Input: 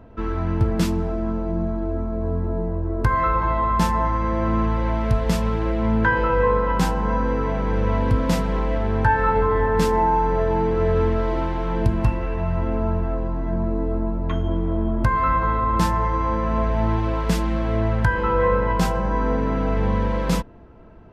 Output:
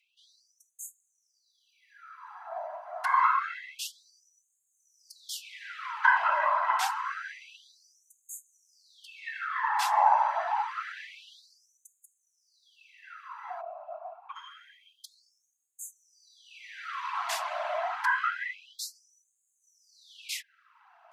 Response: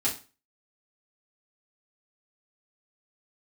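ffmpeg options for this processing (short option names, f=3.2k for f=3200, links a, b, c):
-filter_complex "[0:a]asplit=3[a][b][c];[a]afade=t=out:st=13.6:d=0.02[d];[b]asplit=3[e][f][g];[e]bandpass=f=730:t=q:w=8,volume=0dB[h];[f]bandpass=f=1.09k:t=q:w=8,volume=-6dB[i];[g]bandpass=f=2.44k:t=q:w=8,volume=-9dB[j];[h][i][j]amix=inputs=3:normalize=0,afade=t=in:st=13.6:d=0.02,afade=t=out:st=14.35:d=0.02[k];[c]afade=t=in:st=14.35:d=0.02[l];[d][k][l]amix=inputs=3:normalize=0,afftfilt=real='hypot(re,im)*cos(2*PI*random(0))':imag='hypot(re,im)*sin(2*PI*random(1))':win_size=512:overlap=0.75,afftfilt=real='re*gte(b*sr/1024,570*pow(6400/570,0.5+0.5*sin(2*PI*0.27*pts/sr)))':imag='im*gte(b*sr/1024,570*pow(6400/570,0.5+0.5*sin(2*PI*0.27*pts/sr)))':win_size=1024:overlap=0.75,volume=4.5dB"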